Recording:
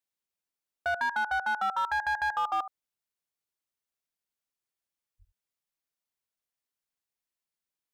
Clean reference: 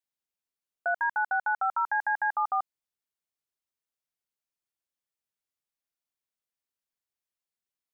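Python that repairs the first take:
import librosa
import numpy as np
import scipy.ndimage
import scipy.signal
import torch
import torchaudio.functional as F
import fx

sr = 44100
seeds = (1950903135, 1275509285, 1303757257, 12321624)

y = fx.fix_declip(x, sr, threshold_db=-23.5)
y = fx.highpass(y, sr, hz=140.0, slope=24, at=(5.18, 5.3), fade=0.02)
y = fx.fix_echo_inverse(y, sr, delay_ms=72, level_db=-13.5)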